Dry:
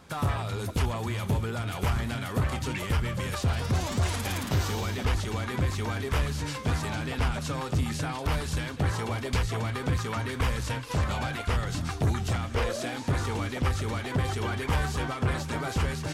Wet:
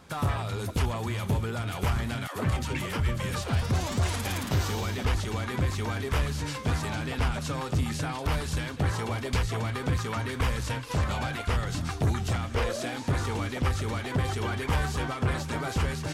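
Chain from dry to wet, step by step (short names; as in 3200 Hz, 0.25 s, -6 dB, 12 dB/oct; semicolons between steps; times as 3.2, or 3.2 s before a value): 2.27–3.63 dispersion lows, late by 93 ms, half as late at 340 Hz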